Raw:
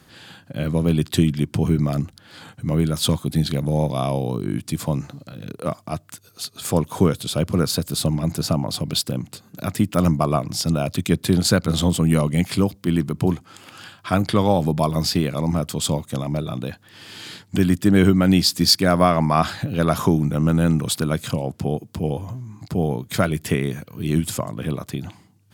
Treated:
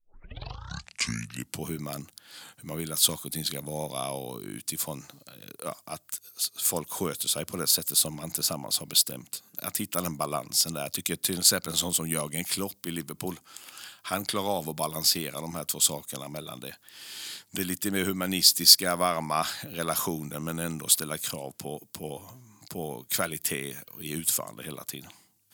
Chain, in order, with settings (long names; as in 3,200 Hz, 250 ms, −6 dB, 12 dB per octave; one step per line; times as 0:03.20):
turntable start at the beginning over 1.66 s
RIAA equalisation recording
level −8 dB